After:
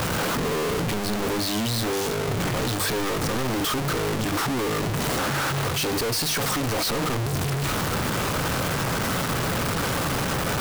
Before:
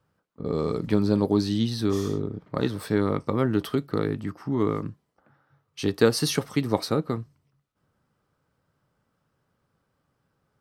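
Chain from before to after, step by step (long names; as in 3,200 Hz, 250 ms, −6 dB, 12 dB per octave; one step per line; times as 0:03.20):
sign of each sample alone
mains-hum notches 50/100/150/200 Hz
level +3 dB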